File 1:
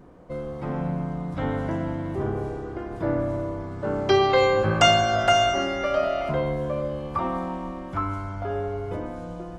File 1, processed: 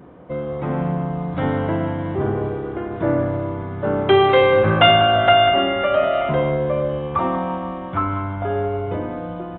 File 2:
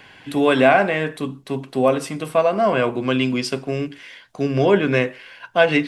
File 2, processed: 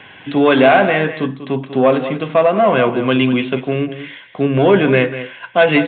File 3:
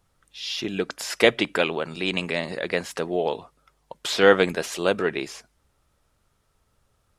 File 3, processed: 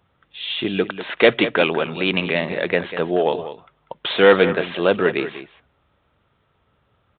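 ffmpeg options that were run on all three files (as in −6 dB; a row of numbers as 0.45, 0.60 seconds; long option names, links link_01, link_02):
-filter_complex "[0:a]acontrast=88,highpass=77,asplit=2[link_01][link_02];[link_02]aecho=0:1:194:0.251[link_03];[link_01][link_03]amix=inputs=2:normalize=0,aresample=8000,aresample=44100,volume=-1dB"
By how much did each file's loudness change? +5.5, +4.5, +4.5 LU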